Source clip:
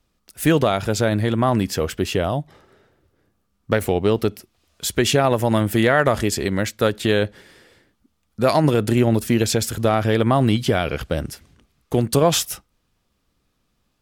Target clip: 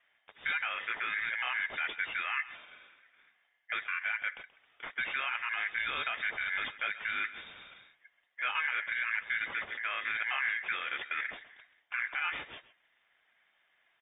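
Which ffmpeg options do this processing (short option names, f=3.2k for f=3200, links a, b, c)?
-filter_complex "[0:a]highpass=f=150:p=1,areverse,acompressor=threshold=-25dB:ratio=20,areverse,alimiter=level_in=0.5dB:limit=-24dB:level=0:latency=1:release=152,volume=-0.5dB,asplit=3[a][b][c];[b]asetrate=22050,aresample=44100,atempo=2,volume=-18dB[d];[c]asetrate=29433,aresample=44100,atempo=1.49831,volume=-15dB[e];[a][d][e]amix=inputs=3:normalize=0,aeval=exprs='val(0)*sin(2*PI*1800*n/s)':c=same,flanger=delay=2.3:depth=7.3:regen=-32:speed=1.8:shape=sinusoidal,asplit=2[f][g];[g]adelay=130,highpass=300,lowpass=3.4k,asoftclip=type=hard:threshold=-33.5dB,volume=-15dB[h];[f][h]amix=inputs=2:normalize=0,lowpass=f=3.1k:t=q:w=0.5098,lowpass=f=3.1k:t=q:w=0.6013,lowpass=f=3.1k:t=q:w=0.9,lowpass=f=3.1k:t=q:w=2.563,afreqshift=-3700,volume=8dB"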